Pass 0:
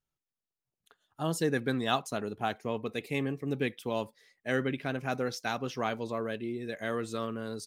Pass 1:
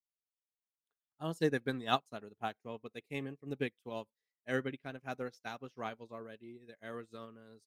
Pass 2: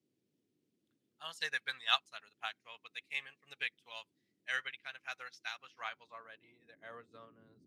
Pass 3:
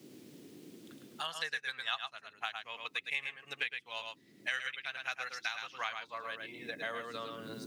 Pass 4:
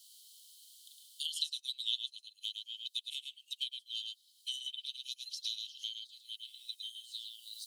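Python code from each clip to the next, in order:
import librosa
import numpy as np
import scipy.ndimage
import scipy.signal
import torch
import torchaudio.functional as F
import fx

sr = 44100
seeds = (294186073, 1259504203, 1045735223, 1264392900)

y1 = fx.upward_expand(x, sr, threshold_db=-44.0, expansion=2.5)
y2 = fx.tone_stack(y1, sr, knobs='10-0-10')
y2 = fx.dmg_noise_band(y2, sr, seeds[0], low_hz=83.0, high_hz=340.0, level_db=-75.0)
y2 = fx.filter_sweep_bandpass(y2, sr, from_hz=2400.0, to_hz=250.0, start_s=5.53, end_s=7.63, q=0.73)
y2 = y2 * librosa.db_to_amplitude(10.5)
y3 = fx.rider(y2, sr, range_db=10, speed_s=2.0)
y3 = y3 + 10.0 ** (-6.0 / 20.0) * np.pad(y3, (int(108 * sr / 1000.0), 0))[:len(y3)]
y3 = fx.band_squash(y3, sr, depth_pct=100)
y4 = scipy.signal.sosfilt(scipy.signal.cheby1(6, 6, 3000.0, 'highpass', fs=sr, output='sos'), y3)
y4 = y4 * librosa.db_to_amplitude(9.5)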